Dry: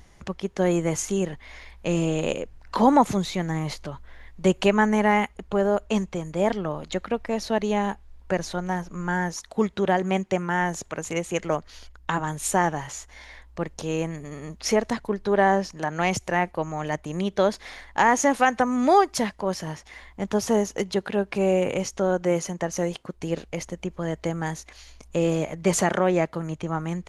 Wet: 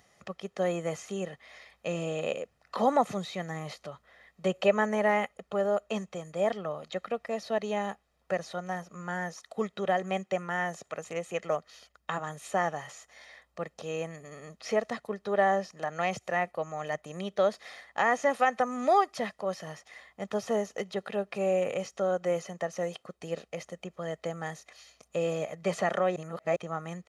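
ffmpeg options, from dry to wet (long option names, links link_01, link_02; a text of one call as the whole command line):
ffmpeg -i in.wav -filter_complex "[0:a]asettb=1/sr,asplit=3[link_01][link_02][link_03];[link_01]atrim=end=4.534[link_04];[link_02]atrim=start=4.53:end=5.42,asetpts=PTS-STARTPTS,afade=type=in:duration=0.004:curve=qsin,afade=type=out:start_time=0.886:duration=0.004:curve=qsin,equalizer=frequency=540:width=4.6:gain=9[link_05];[link_03]atrim=start=5.416[link_06];[link_04][link_05]acrossfade=duration=0.004:curve1=hsin:curve2=qsin[link_07];[link_07][link_06]acrossfade=duration=0.004:curve1=qsin:curve2=hsin,asplit=3[link_08][link_09][link_10];[link_08]atrim=end=26.162[link_11];[link_09]atrim=start=26.158:end=26.562,asetpts=PTS-STARTPTS,areverse[link_12];[link_10]atrim=start=26.558[link_13];[link_11][link_12]acrossfade=duration=0.004:curve1=hsin:curve2=hsin[link_14];[link_14][link_13]acrossfade=duration=0.004:curve1=hsin:curve2=hsin,acrossover=split=4200[link_15][link_16];[link_16]acompressor=threshold=-44dB:ratio=4:attack=1:release=60[link_17];[link_15][link_17]amix=inputs=2:normalize=0,highpass=210,aecho=1:1:1.6:0.56,volume=-6.5dB" out.wav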